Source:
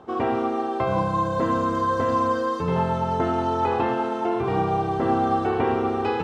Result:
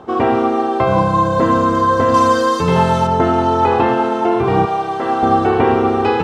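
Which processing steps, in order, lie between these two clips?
2.14–3.07 high shelf 3000 Hz +11.5 dB; 4.65–5.23 HPF 790 Hz 6 dB/oct; gain +9 dB

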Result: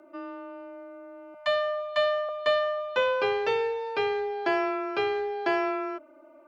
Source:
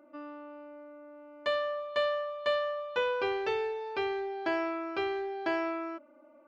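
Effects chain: 1.34–2.29 Chebyshev band-stop 220–560 Hz, order 5; frequency shift +21 Hz; gain +5 dB

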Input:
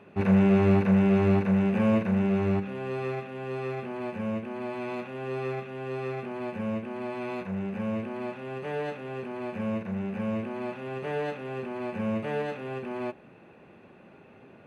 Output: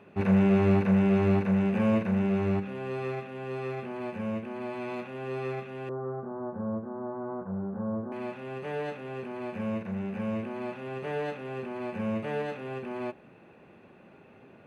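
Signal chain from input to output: 5.89–8.12 steep low-pass 1400 Hz 48 dB/oct; gain -1.5 dB

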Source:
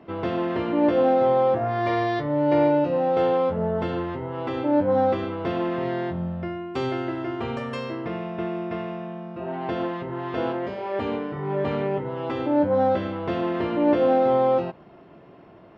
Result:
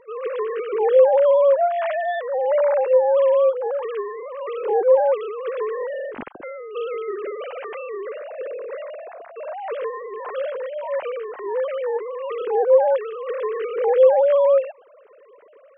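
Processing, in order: sine-wave speech; gain +3 dB

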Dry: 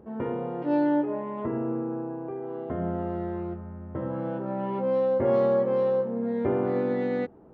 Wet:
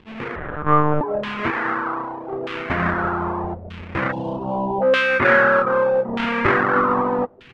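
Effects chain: half-waves squared off; 1.51–2.32 low shelf 250 Hz -11 dB; 4.12–4.82 elliptic band-stop 950–2800 Hz; feedback echo 0.482 s, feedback 40%, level -24 dB; bit-crush 8-bit; LFO low-pass saw down 0.81 Hz 640–3100 Hz; AGC gain up to 8 dB; reverb removal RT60 0.73 s; 0.36–1.01 monotone LPC vocoder at 8 kHz 150 Hz; dynamic EQ 1300 Hz, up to +8 dB, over -32 dBFS, Q 1; gain -5 dB

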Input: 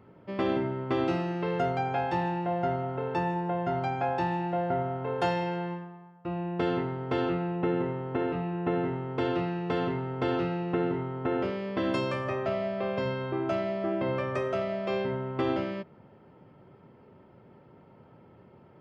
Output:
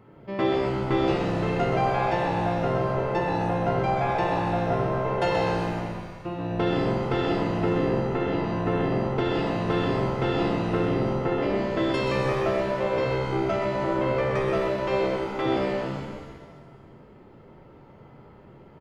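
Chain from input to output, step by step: 15.04–15.46 HPF 410 Hz; frequency-shifting echo 0.127 s, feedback 56%, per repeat -63 Hz, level -7 dB; shimmer reverb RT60 1.3 s, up +7 st, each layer -8 dB, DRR 2 dB; gain +2 dB

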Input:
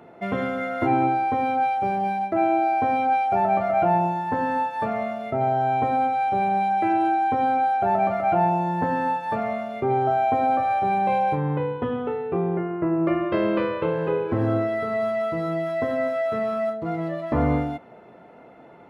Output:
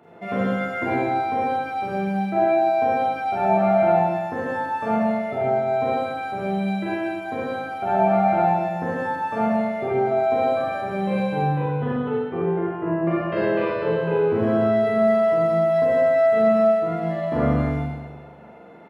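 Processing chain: HPF 80 Hz; doubler 41 ms -8.5 dB; Schroeder reverb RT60 1.3 s, combs from 32 ms, DRR -7 dB; gain -5.5 dB

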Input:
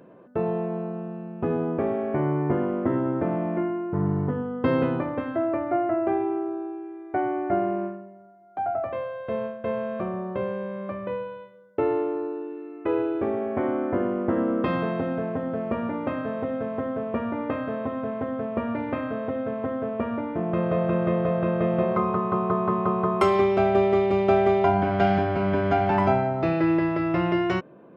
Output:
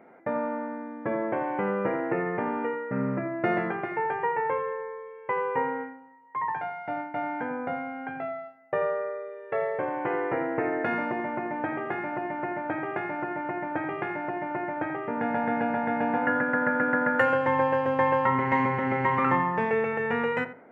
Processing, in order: resonant high shelf 2100 Hz -10.5 dB, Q 3; speed mistake 33 rpm record played at 45 rpm; darkening echo 84 ms, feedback 23%, low-pass 1900 Hz, level -12 dB; gain -4 dB

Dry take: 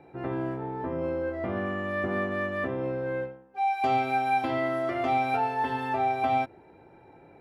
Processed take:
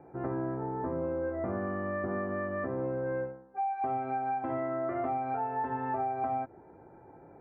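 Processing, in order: compressor, threshold -29 dBFS, peak gain reduction 8.5 dB; LPF 1600 Hz 24 dB/oct

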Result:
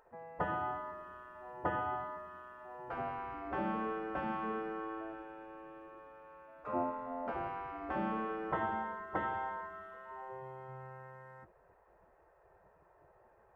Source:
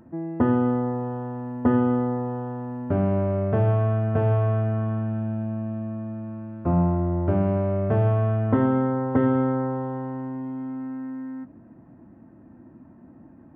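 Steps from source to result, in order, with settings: spectral gate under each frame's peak -15 dB weak; gain -3 dB

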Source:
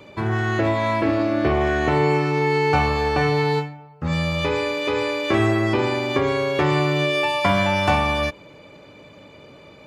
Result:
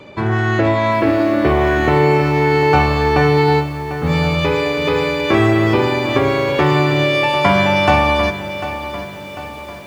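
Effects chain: high shelf 8200 Hz -9.5 dB; notches 50/100 Hz; on a send at -19.5 dB: reverb RT60 0.85 s, pre-delay 0.11 s; on the sum: lo-fi delay 0.746 s, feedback 55%, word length 7-bit, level -12 dB; gain +5.5 dB

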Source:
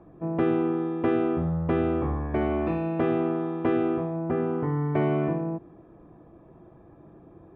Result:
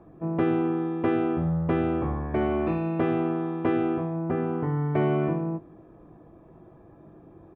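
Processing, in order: doubler 19 ms -11 dB

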